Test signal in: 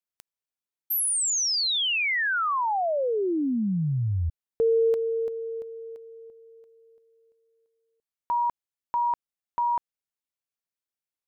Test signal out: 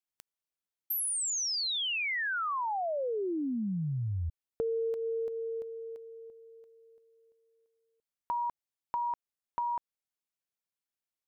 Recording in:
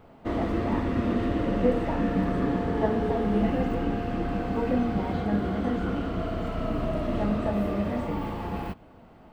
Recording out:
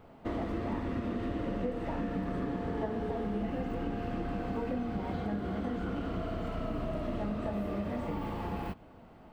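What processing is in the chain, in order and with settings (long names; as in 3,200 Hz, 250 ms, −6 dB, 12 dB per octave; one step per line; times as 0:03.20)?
downward compressor 4 to 1, threshold −29 dBFS
level −2.5 dB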